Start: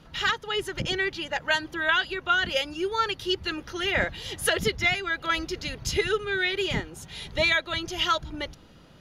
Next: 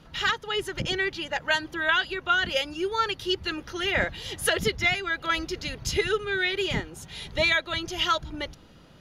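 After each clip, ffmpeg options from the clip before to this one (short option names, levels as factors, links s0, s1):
-af anull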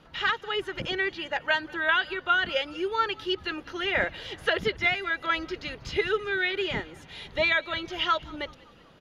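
-filter_complex "[0:a]asplit=5[s0][s1][s2][s3][s4];[s1]adelay=190,afreqshift=-45,volume=0.0668[s5];[s2]adelay=380,afreqshift=-90,volume=0.0359[s6];[s3]adelay=570,afreqshift=-135,volume=0.0195[s7];[s4]adelay=760,afreqshift=-180,volume=0.0105[s8];[s0][s5][s6][s7][s8]amix=inputs=5:normalize=0,acrossover=split=5000[s9][s10];[s10]acompressor=threshold=0.00251:ratio=4:attack=1:release=60[s11];[s9][s11]amix=inputs=2:normalize=0,bass=f=250:g=-7,treble=f=4000:g=-7"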